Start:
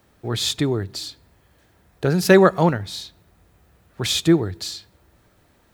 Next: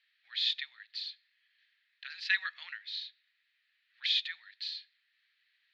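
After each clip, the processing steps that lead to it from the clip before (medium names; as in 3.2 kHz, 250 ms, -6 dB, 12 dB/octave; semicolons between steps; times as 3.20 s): elliptic band-pass 1.8–4.3 kHz, stop band 70 dB; trim -4.5 dB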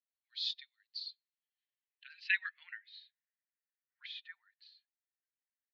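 expander on every frequency bin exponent 1.5; peaking EQ 1.5 kHz +4.5 dB 0.44 oct; band-pass sweep 5.3 kHz -> 1 kHz, 0.84–4.19 s; trim +1.5 dB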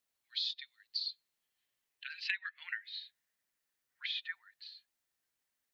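compression 16:1, threshold -43 dBFS, peak gain reduction 18 dB; trim +10 dB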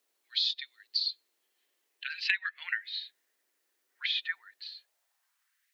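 high-pass sweep 360 Hz -> 2 kHz, 4.65–5.71 s; trim +7 dB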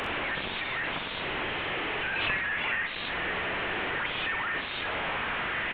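one-bit delta coder 16 kbps, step -24 dBFS; early reflections 43 ms -10 dB, 64 ms -8.5 dB; swell ahead of each attack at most 22 dB/s; trim -1.5 dB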